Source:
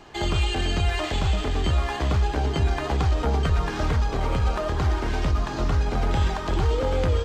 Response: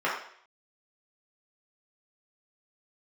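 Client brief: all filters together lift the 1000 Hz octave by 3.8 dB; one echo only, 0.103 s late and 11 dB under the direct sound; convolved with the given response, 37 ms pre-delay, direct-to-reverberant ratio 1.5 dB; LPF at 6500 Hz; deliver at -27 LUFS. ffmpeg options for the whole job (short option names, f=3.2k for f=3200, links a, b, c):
-filter_complex "[0:a]lowpass=6.5k,equalizer=f=1k:t=o:g=5,aecho=1:1:103:0.282,asplit=2[a][b];[1:a]atrim=start_sample=2205,adelay=37[c];[b][c]afir=irnorm=-1:irlink=0,volume=-15dB[d];[a][d]amix=inputs=2:normalize=0,volume=-4.5dB"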